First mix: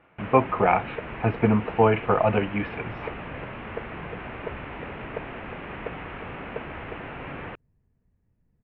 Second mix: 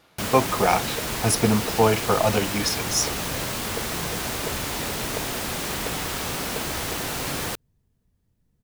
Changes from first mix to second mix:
first sound +6.0 dB; master: remove steep low-pass 2.7 kHz 48 dB/octave

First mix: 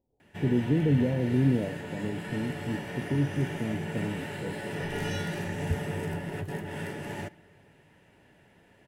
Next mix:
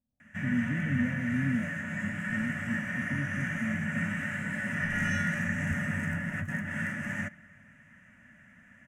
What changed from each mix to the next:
speech -7.0 dB; master: add FFT filter 160 Hz 0 dB, 230 Hz +9 dB, 410 Hz -26 dB, 590 Hz -3 dB, 860 Hz -12 dB, 1.2 kHz +6 dB, 1.9 kHz +10 dB, 4.3 kHz -17 dB, 6.4 kHz +4 dB, 11 kHz -6 dB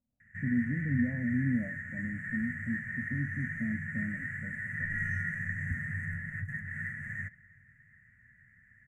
background: add FFT filter 130 Hz 0 dB, 190 Hz -14 dB, 360 Hz -23 dB, 1.1 kHz -24 dB, 1.9 kHz 0 dB, 2.8 kHz -26 dB, 5.1 kHz -26 dB, 7.2 kHz -14 dB

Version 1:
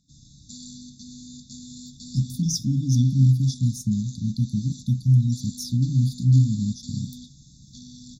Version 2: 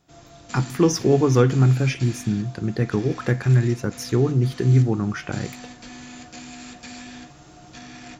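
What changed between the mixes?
speech: entry -1.60 s; master: remove brick-wall FIR band-stop 280–3400 Hz

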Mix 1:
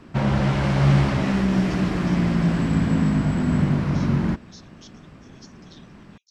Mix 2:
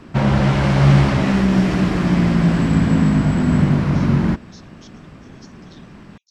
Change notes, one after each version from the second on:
background +5.0 dB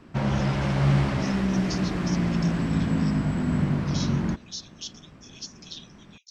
speech +11.5 dB; background -9.0 dB

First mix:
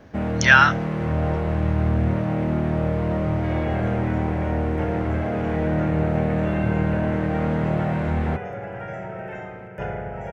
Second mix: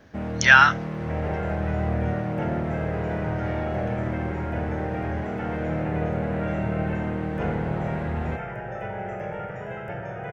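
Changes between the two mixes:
first sound -5.5 dB; second sound: entry -2.40 s

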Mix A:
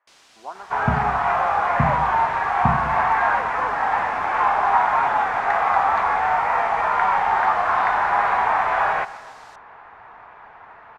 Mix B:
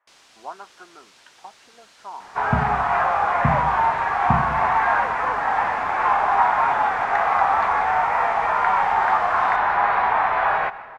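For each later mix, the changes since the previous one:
second sound: entry +1.65 s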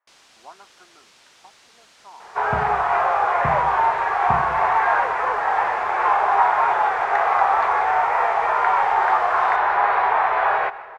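speech -8.0 dB; second sound: add resonant low shelf 320 Hz -6 dB, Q 3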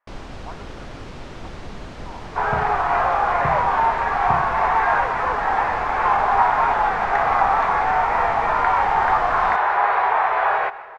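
speech +3.5 dB; first sound: remove differentiator

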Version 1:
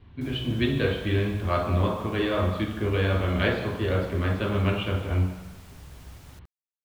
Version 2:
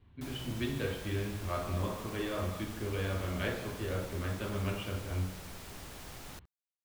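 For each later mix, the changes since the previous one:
speech -10.5 dB; background +5.0 dB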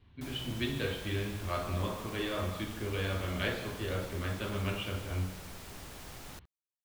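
speech: add treble shelf 2.8 kHz +9.5 dB

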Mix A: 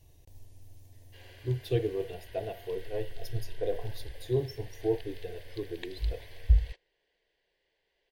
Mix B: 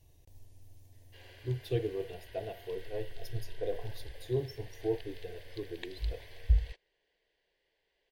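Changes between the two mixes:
speech -3.5 dB; reverb: off

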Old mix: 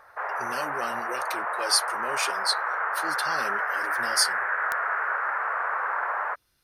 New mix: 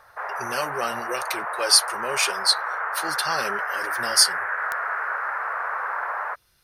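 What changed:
speech +6.5 dB; master: add peaking EQ 280 Hz -8.5 dB 0.42 oct

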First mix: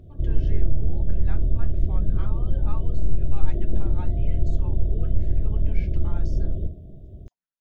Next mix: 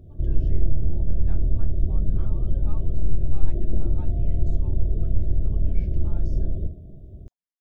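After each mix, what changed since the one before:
speech -4.5 dB; master: add peaking EQ 2.1 kHz -6 dB 2.5 oct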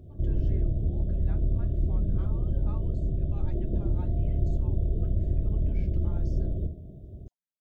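background: add high-pass 47 Hz 6 dB/octave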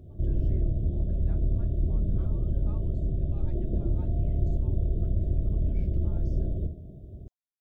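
speech -5.5 dB

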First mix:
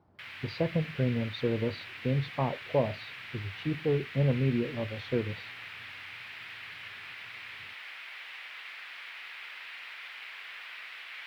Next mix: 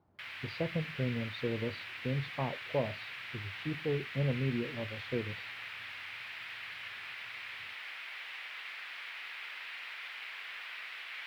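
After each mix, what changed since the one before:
speech -5.5 dB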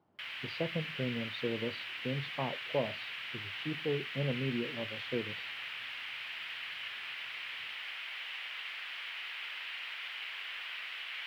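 speech: add high-pass 150 Hz 12 dB/octave; master: add peaking EQ 3 kHz +7 dB 0.34 oct

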